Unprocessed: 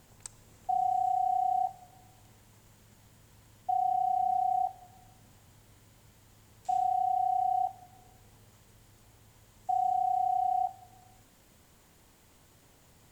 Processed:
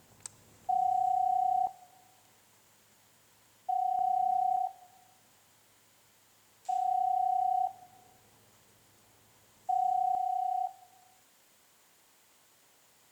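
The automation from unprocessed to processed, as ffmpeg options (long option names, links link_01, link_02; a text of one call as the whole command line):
ffmpeg -i in.wav -af "asetnsamples=nb_out_samples=441:pad=0,asendcmd='1.67 highpass f 580;3.99 highpass f 240;4.57 highpass f 670;6.87 highpass f 310;10.15 highpass f 790',highpass=frequency=140:poles=1" out.wav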